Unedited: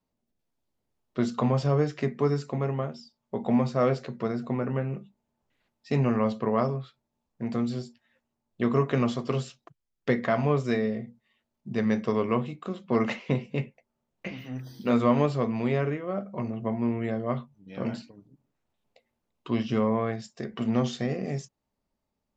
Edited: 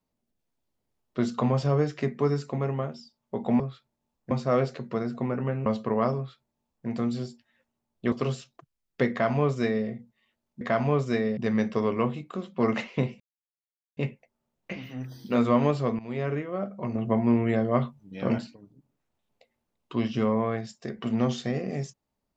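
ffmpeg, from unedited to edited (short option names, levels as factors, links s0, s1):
-filter_complex "[0:a]asplit=11[s0][s1][s2][s3][s4][s5][s6][s7][s8][s9][s10];[s0]atrim=end=3.602[s11];[s1]atrim=start=6.718:end=7.432[s12];[s2]atrim=start=3.598:end=4.952[s13];[s3]atrim=start=6.218:end=8.682[s14];[s4]atrim=start=9.198:end=11.692[s15];[s5]atrim=start=10.188:end=10.952[s16];[s6]atrim=start=11.688:end=13.52,asetpts=PTS-STARTPTS,afade=t=out:st=1.828:d=0.004:c=hsin,apad=pad_dur=0.77[s17];[s7]atrim=start=13.52:end=15.54,asetpts=PTS-STARTPTS,afade=t=in:d=0.004:c=hsin,afade=t=out:st=2.016:d=0.004:c=hsin:silence=0.149624[s18];[s8]atrim=start=15.54:end=16.502,asetpts=PTS-STARTPTS,afade=t=in:d=0.38:silence=0.149624[s19];[s9]atrim=start=16.498:end=17.932,asetpts=PTS-STARTPTS,volume=1.78[s20];[s10]atrim=start=17.928[s21];[s11][s12]acrossfade=d=0.004:c1=hsin:c2=hsin[s22];[s22][s13]acrossfade=d=0.004:c1=hsin:c2=hsin[s23];[s23][s14]acrossfade=d=0.004:c1=hsin:c2=hsin[s24];[s24][s15]acrossfade=d=0.004:c1=hsin:c2=hsin[s25];[s25][s16]acrossfade=d=0.004:c1=hsin:c2=hsin[s26];[s17][s18][s19]concat=n=3:v=0:a=1[s27];[s26][s27]acrossfade=d=0.004:c1=hsin:c2=hsin[s28];[s28][s20]acrossfade=d=0.004:c1=hsin:c2=hsin[s29];[s29][s21]acrossfade=d=0.004:c1=hsin:c2=hsin"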